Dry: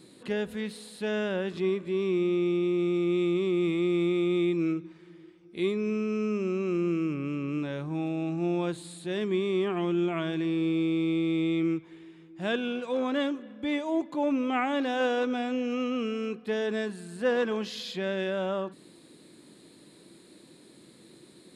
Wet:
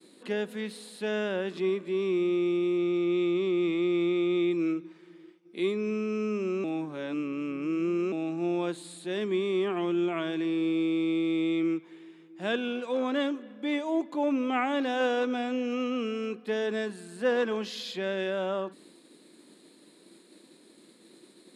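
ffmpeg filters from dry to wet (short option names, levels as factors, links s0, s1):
-filter_complex "[0:a]asettb=1/sr,asplit=3[s0][s1][s2];[s0]atrim=end=2.784[s3];[s1]atrim=start=2.78:end=4.51,asetpts=PTS-STARTPTS,afade=t=in:d=0.004:c=qsin,afade=t=out:st=1.726:d=0.004:c=qsin,lowpass=f=6800:w=0.5412,lowpass=f=6800:w=1.3066[s4];[s2]atrim=start=4.506[s5];[s3][s4]acrossfade=d=0.004:c1=hsin:c2=qsin[s6];[s6][s5]acrossfade=d=0.004:c1=qsin:c2=hsin,asplit=3[s7][s8][s9];[s7]atrim=end=6.642[s10];[s8]atrim=start=6.638:end=8.122,asetpts=PTS-STARTPTS,areverse[s11];[s9]atrim=start=8.118[s12];[s10][s11]acrossfade=d=0.004:c1=hsin:c2=hsin[s13];[s13][s12]acrossfade=d=0.004:c1=hsin:c2=hsin,agate=range=0.0224:threshold=0.00282:ratio=3:detection=peak,highpass=f=200:w=0.5412,highpass=f=200:w=1.3066"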